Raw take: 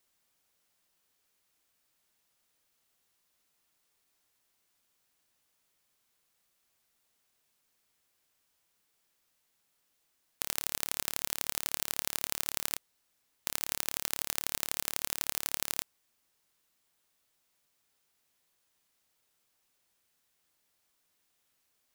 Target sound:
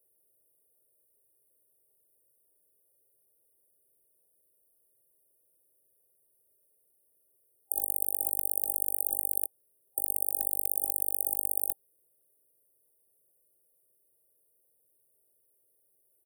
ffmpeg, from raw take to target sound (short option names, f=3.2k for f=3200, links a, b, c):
-filter_complex "[0:a]highpass=f=200:p=1,tiltshelf=f=670:g=5,aecho=1:1:2.9:0.79,afftfilt=real='re*(1-between(b*sr/4096,590,6400))':imag='im*(1-between(b*sr/4096,590,6400))':win_size=4096:overlap=0.75,highshelf=f=11k:g=-7.5,acrossover=split=350[a][b];[a]alimiter=level_in=26.5dB:limit=-24dB:level=0:latency=1:release=31,volume=-26.5dB[c];[c][b]amix=inputs=2:normalize=0,crystalizer=i=2.5:c=0,asetrate=59535,aresample=44100,volume=3dB"